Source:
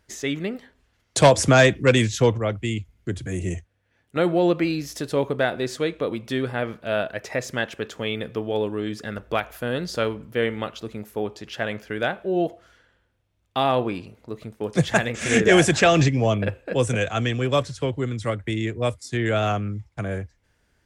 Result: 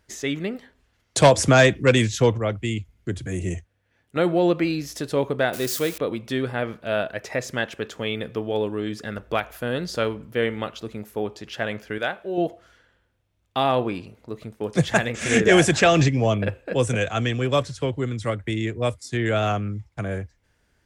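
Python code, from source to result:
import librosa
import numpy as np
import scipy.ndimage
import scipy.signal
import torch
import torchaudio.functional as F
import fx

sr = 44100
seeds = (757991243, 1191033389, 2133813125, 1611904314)

y = fx.crossing_spikes(x, sr, level_db=-22.0, at=(5.53, 5.98))
y = fx.low_shelf(y, sr, hz=380.0, db=-9.0, at=(11.98, 12.38))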